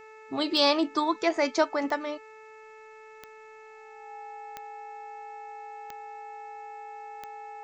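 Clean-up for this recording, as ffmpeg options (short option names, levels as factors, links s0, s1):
-af "adeclick=t=4,bandreject=f=436.5:t=h:w=4,bandreject=f=873:t=h:w=4,bandreject=f=1309.5:t=h:w=4,bandreject=f=1746:t=h:w=4,bandreject=f=2182.5:t=h:w=4,bandreject=f=2619:t=h:w=4,bandreject=f=820:w=30,agate=range=0.0891:threshold=0.00891"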